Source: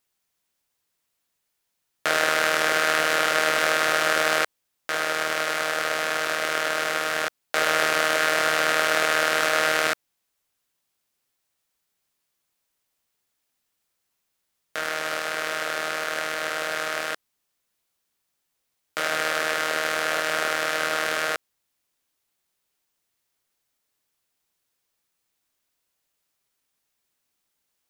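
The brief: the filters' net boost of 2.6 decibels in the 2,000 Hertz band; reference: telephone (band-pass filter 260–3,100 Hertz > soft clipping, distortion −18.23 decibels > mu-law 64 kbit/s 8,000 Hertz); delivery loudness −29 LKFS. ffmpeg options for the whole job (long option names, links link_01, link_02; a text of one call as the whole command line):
ffmpeg -i in.wav -af "highpass=260,lowpass=3100,equalizer=frequency=2000:width_type=o:gain=4,asoftclip=threshold=-9.5dB,volume=-5.5dB" -ar 8000 -c:a pcm_mulaw out.wav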